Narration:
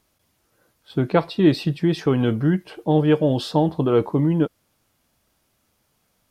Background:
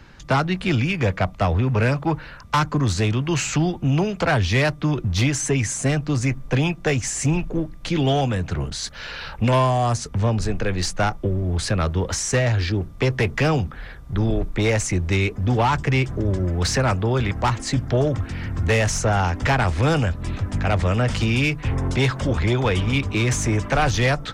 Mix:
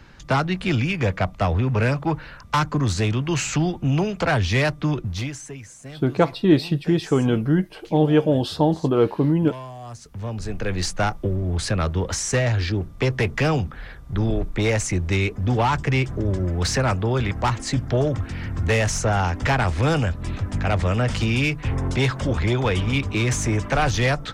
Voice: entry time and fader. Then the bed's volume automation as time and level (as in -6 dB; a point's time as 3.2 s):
5.05 s, 0.0 dB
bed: 4.93 s -1 dB
5.62 s -18 dB
9.79 s -18 dB
10.74 s -1 dB